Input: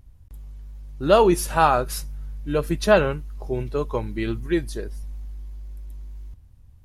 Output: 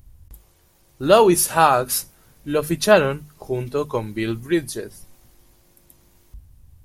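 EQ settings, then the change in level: treble shelf 6.8 kHz +11 dB; hum notches 50/100/150/200/250 Hz; +2.5 dB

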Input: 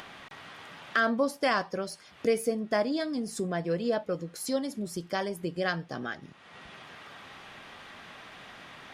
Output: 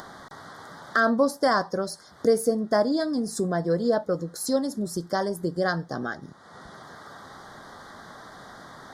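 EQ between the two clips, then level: Butterworth band-stop 2.6 kHz, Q 1.1; +5.5 dB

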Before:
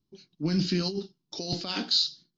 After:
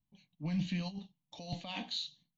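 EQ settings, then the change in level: static phaser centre 1.4 kHz, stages 6; -4.0 dB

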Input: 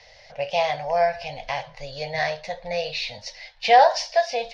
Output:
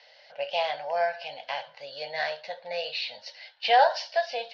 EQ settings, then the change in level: cabinet simulation 300–5400 Hz, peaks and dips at 310 Hz +4 dB, 570 Hz +4 dB, 880 Hz +4 dB, 1.5 kHz +10 dB, 3 kHz +9 dB, 4.3 kHz +6 dB; -8.5 dB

